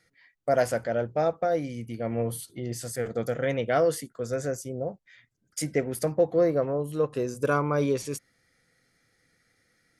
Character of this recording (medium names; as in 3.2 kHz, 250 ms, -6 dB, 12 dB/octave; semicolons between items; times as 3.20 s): noise floor -72 dBFS; spectral tilt -5.5 dB/octave